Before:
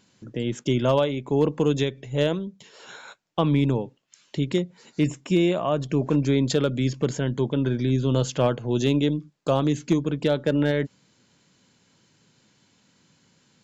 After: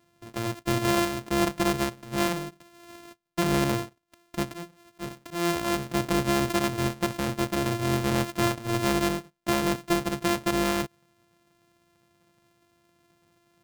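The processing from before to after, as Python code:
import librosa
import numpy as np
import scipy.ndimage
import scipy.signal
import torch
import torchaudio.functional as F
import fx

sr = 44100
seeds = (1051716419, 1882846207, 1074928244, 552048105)

y = np.r_[np.sort(x[:len(x) // 128 * 128].reshape(-1, 128), axis=1).ravel(), x[len(x) // 128 * 128:]]
y = fx.auto_swell(y, sr, attack_ms=183.0, at=(4.42, 5.93), fade=0.02)
y = y * 10.0 ** (-3.5 / 20.0)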